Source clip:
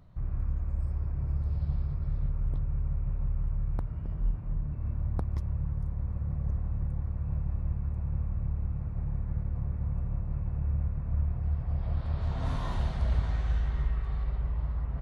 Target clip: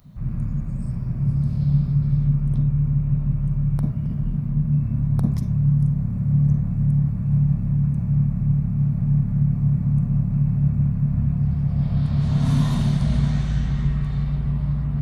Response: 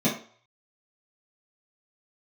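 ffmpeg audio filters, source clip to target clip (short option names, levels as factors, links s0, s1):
-filter_complex "[0:a]crystalizer=i=5.5:c=0,asplit=2[s0][s1];[s1]bass=f=250:g=15,treble=f=4000:g=-1[s2];[1:a]atrim=start_sample=2205,adelay=42[s3];[s2][s3]afir=irnorm=-1:irlink=0,volume=0.126[s4];[s0][s4]amix=inputs=2:normalize=0"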